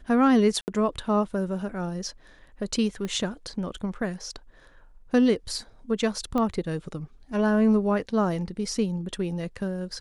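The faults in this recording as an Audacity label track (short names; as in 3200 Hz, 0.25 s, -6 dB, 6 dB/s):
0.610000	0.680000	gap 69 ms
3.050000	3.050000	pop -19 dBFS
6.380000	6.380000	pop -16 dBFS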